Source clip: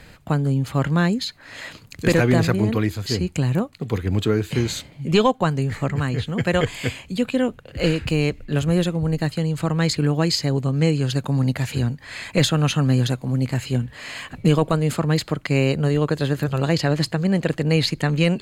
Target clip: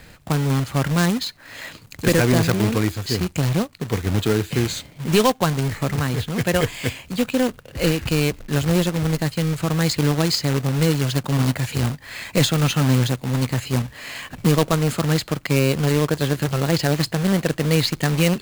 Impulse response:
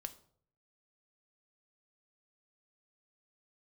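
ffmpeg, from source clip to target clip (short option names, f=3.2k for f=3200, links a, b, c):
-af "acrusher=bits=2:mode=log:mix=0:aa=0.000001"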